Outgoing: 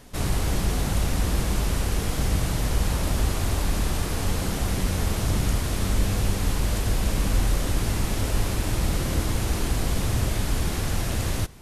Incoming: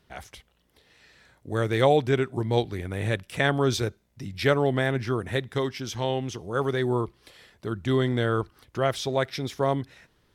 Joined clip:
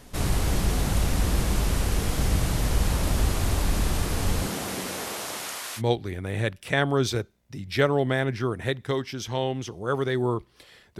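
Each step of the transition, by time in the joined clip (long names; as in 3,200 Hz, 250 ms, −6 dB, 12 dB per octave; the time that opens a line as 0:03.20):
outgoing
0:04.46–0:05.82: high-pass filter 160 Hz → 1,200 Hz
0:05.79: continue with incoming from 0:02.46, crossfade 0.06 s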